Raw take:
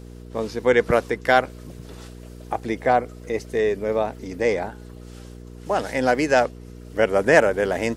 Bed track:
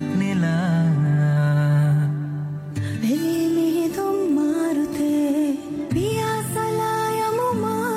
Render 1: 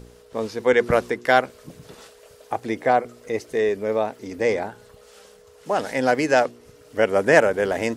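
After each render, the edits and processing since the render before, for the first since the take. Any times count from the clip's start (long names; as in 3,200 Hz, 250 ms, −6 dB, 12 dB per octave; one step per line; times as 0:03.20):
hum removal 60 Hz, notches 6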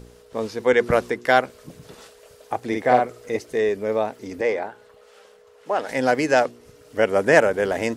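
0:02.67–0:03.37: double-tracking delay 48 ms −3 dB
0:04.41–0:05.89: bass and treble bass −12 dB, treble −9 dB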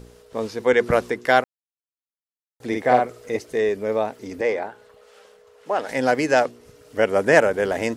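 0:01.44–0:02.60: silence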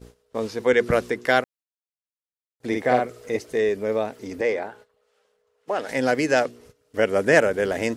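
noise gate −45 dBFS, range −17 dB
dynamic equaliser 890 Hz, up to −6 dB, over −31 dBFS, Q 1.6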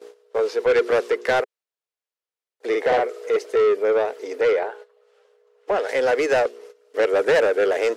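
four-pole ladder high-pass 380 Hz, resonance 60%
mid-hump overdrive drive 22 dB, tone 3,900 Hz, clips at −10 dBFS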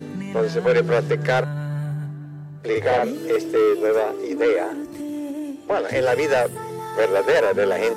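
mix in bed track −9 dB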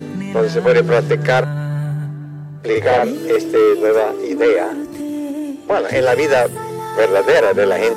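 level +5.5 dB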